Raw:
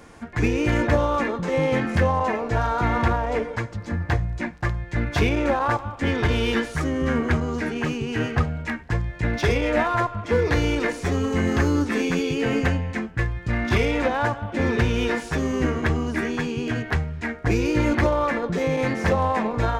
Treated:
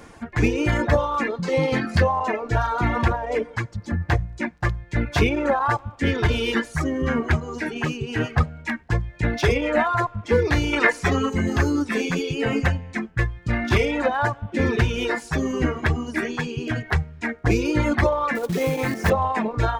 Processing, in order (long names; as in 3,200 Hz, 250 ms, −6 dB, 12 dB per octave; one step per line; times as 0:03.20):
0:10.73–0:11.30: parametric band 1,600 Hz +8.5 dB 2.4 octaves
reverb reduction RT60 1.8 s
0:01.30–0:02.04: parametric band 4,500 Hz +9.5 dB 0.37 octaves
0:18.35–0:19.10: floating-point word with a short mantissa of 2 bits
level +2.5 dB